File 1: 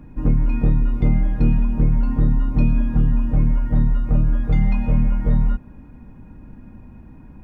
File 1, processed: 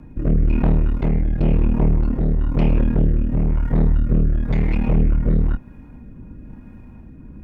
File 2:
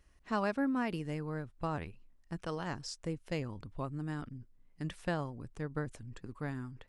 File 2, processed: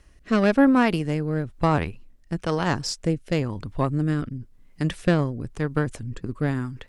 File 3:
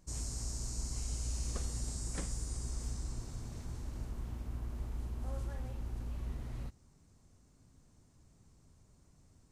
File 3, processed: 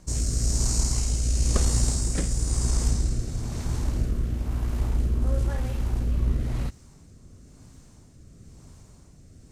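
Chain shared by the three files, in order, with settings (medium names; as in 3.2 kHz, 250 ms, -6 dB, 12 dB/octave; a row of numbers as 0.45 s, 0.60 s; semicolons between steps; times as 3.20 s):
Chebyshev shaper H 5 -14 dB, 8 -13 dB, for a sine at -5 dBFS; rotary cabinet horn 1 Hz; peak normalisation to -6 dBFS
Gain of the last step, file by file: -2.5 dB, +9.0 dB, +10.5 dB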